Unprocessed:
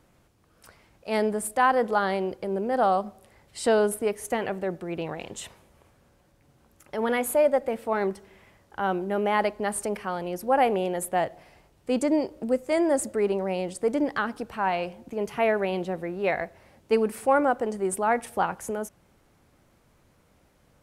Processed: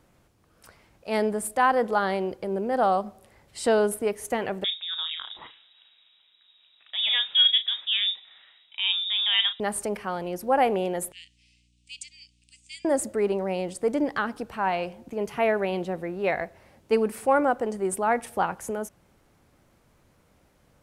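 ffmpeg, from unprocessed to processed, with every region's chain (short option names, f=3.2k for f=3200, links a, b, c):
-filter_complex "[0:a]asettb=1/sr,asplit=3[a][b][c];[a]atrim=end=4.644[d];[b]atrim=start=4.64:end=9.6,asetpts=PTS-STARTPTS,afade=t=in:d=0.004:c=qsin,afade=t=out:st=4.956:d=0.004:c=qsin,asplit=2[e][f];[f]adelay=37,volume=-10.5dB[g];[e][g]amix=inputs=2:normalize=0,atrim=end_sample=218736,lowpass=f=3.3k:t=q:w=0.5098,lowpass=f=3.3k:t=q:w=0.6013,lowpass=f=3.3k:t=q:w=0.9,lowpass=f=3.3k:t=q:w=2.563,afreqshift=-3900[h];[c]atrim=start=9.596[i];[d][h]acrossfade=d=0.004:c1=hsin:c2=qsin[j];[j][i]acrossfade=d=0.004:c1=qsin:c2=hsin,asettb=1/sr,asplit=3[k][l][m];[k]atrim=end=11.124[n];[l]atrim=start=11.12:end=12.85,asetpts=PTS-STARTPTS,afade=t=in:d=0.004:c=qsin,afade=t=out:st=1.726:d=0.004:c=qsin,asuperpass=centerf=4900:order=12:qfactor=0.75,aeval=exprs='val(0)+0.000562*(sin(2*PI*60*n/s)+sin(2*PI*2*60*n/s)/2+sin(2*PI*3*60*n/s)/3+sin(2*PI*4*60*n/s)/4+sin(2*PI*5*60*n/s)/5)':c=same[o];[m]atrim=start=12.846[p];[n][o]acrossfade=d=0.004:c1=hsin:c2=qsin[q];[q][p]acrossfade=d=0.004:c1=qsin:c2=hsin"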